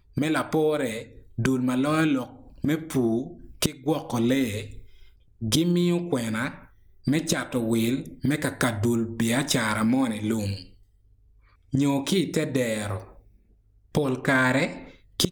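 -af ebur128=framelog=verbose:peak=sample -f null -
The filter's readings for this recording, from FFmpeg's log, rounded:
Integrated loudness:
  I:         -25.5 LUFS
  Threshold: -36.4 LUFS
Loudness range:
  LRA:         2.8 LU
  Threshold: -46.5 LUFS
  LRA low:   -28.0 LUFS
  LRA high:  -25.2 LUFS
Sample peak:
  Peak:       -7.2 dBFS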